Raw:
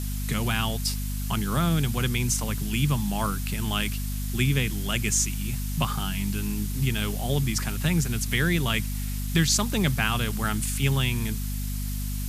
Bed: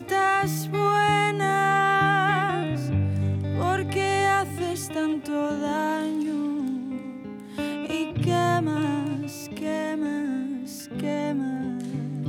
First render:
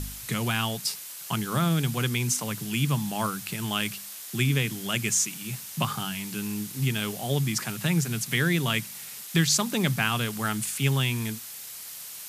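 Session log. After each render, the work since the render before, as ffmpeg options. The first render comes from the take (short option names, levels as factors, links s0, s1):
-af "bandreject=f=50:t=h:w=4,bandreject=f=100:t=h:w=4,bandreject=f=150:t=h:w=4,bandreject=f=200:t=h:w=4,bandreject=f=250:t=h:w=4"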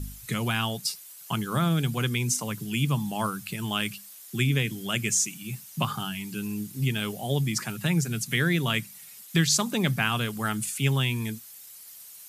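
-af "afftdn=nr=11:nf=-41"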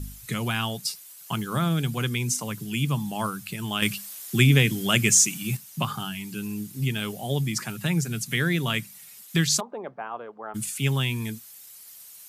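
-filter_complex "[0:a]asettb=1/sr,asplit=3[s0][s1][s2];[s0]atrim=end=0.944[s3];[s1]atrim=start=0.94:end=1.46,asetpts=PTS-STARTPTS,afade=t=in:d=0.004:c=qsin,afade=t=out:st=0.516:d=0.004:c=qsin,acrusher=bits=8:mode=log:mix=0:aa=0.000001[s4];[s2]atrim=start=1.456[s5];[s3][s4]acrossfade=d=0.004:c1=hsin:c2=qsin[s6];[s6][s5]acrossfade=d=0.004:c1=qsin:c2=hsin,asettb=1/sr,asplit=3[s7][s8][s9];[s7]atrim=end=3.824[s10];[s8]atrim=start=3.82:end=5.57,asetpts=PTS-STARTPTS,afade=t=in:d=0.004:c=qsin,afade=t=out:st=1.746:d=0.004:c=qsin,acontrast=82[s11];[s9]atrim=start=5.566[s12];[s10][s11]acrossfade=d=0.004:c1=hsin:c2=qsin[s13];[s13][s12]acrossfade=d=0.004:c1=qsin:c2=hsin,asplit=3[s14][s15][s16];[s14]afade=t=out:st=9.59:d=0.02[s17];[s15]asuperpass=centerf=660:order=4:qfactor=1.1,afade=t=in:st=9.59:d=0.02,afade=t=out:st=10.54:d=0.02[s18];[s16]afade=t=in:st=10.54:d=0.02[s19];[s17][s18][s19]amix=inputs=3:normalize=0"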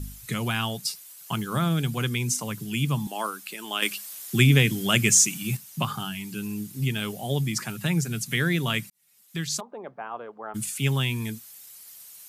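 -filter_complex "[0:a]asettb=1/sr,asplit=3[s0][s1][s2];[s0]atrim=end=3.074[s3];[s1]atrim=start=3.07:end=4.13,asetpts=PTS-STARTPTS,afade=t=in:d=0.004:c=qsin,afade=t=out:st=1.056:d=0.004:c=qsin,highpass=f=290:w=0.5412,highpass=f=290:w=1.3066[s4];[s2]atrim=start=4.126[s5];[s3][s4]acrossfade=d=0.004:c1=hsin:c2=qsin[s6];[s6][s5]acrossfade=d=0.004:c1=qsin:c2=hsin,asplit=2[s7][s8];[s7]atrim=end=8.9,asetpts=PTS-STARTPTS,afade=t=out:st=8.896:d=0.004:c=hsin[s9];[s8]atrim=start=8.9,asetpts=PTS-STARTPTS,afade=t=in:d=1.33[s10];[s9][s10]concat=n=2:v=0:a=1"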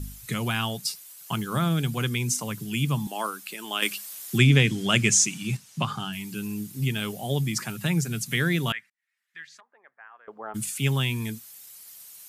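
-filter_complex "[0:a]asettb=1/sr,asplit=3[s0][s1][s2];[s0]atrim=end=4.384[s3];[s1]atrim=start=4.38:end=6.13,asetpts=PTS-STARTPTS,afade=t=in:d=0.004:c=qsin,afade=t=out:st=1.746:d=0.004:c=qsin,lowpass=7500[s4];[s2]atrim=start=6.126[s5];[s3][s4]acrossfade=d=0.004:c1=hsin:c2=qsin[s6];[s6][s5]acrossfade=d=0.004:c1=qsin:c2=hsin,asettb=1/sr,asplit=3[s7][s8][s9];[s7]atrim=end=8.724[s10];[s8]atrim=start=8.72:end=10.28,asetpts=PTS-STARTPTS,afade=t=in:d=0.004:c=qsin,afade=t=out:st=1.556:d=0.004:c=qsin,bandpass=f=1800:t=q:w=4.8[s11];[s9]atrim=start=10.276[s12];[s10][s11]acrossfade=d=0.004:c1=hsin:c2=qsin[s13];[s13][s12]acrossfade=d=0.004:c1=qsin:c2=hsin"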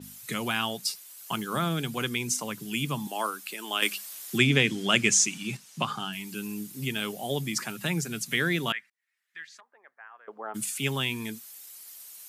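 -af "highpass=220,adynamicequalizer=threshold=0.00794:dfrequency=6400:dqfactor=0.7:tfrequency=6400:tqfactor=0.7:attack=5:release=100:ratio=0.375:range=2:mode=cutabove:tftype=highshelf"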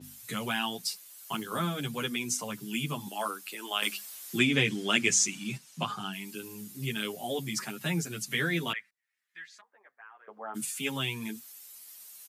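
-filter_complex "[0:a]asplit=2[s0][s1];[s1]adelay=9.5,afreqshift=1.4[s2];[s0][s2]amix=inputs=2:normalize=1"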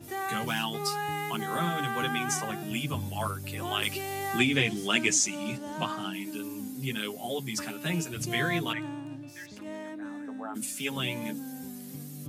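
-filter_complex "[1:a]volume=0.251[s0];[0:a][s0]amix=inputs=2:normalize=0"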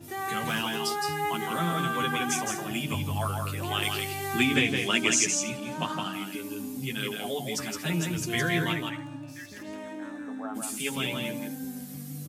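-filter_complex "[0:a]asplit=2[s0][s1];[s1]adelay=12,volume=0.282[s2];[s0][s2]amix=inputs=2:normalize=0,aecho=1:1:165|240:0.631|0.133"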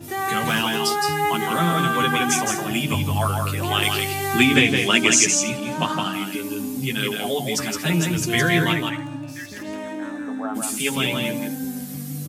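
-af "volume=2.51,alimiter=limit=0.794:level=0:latency=1"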